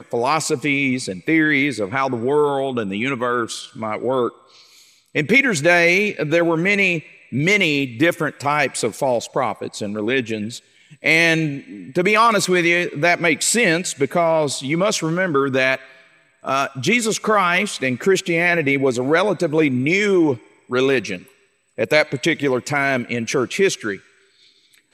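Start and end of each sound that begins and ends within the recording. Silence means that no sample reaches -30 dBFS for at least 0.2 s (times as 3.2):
5.15–7
7.32–10.58
11.04–15.76
16.45–20.37
20.71–21.19
21.78–23.96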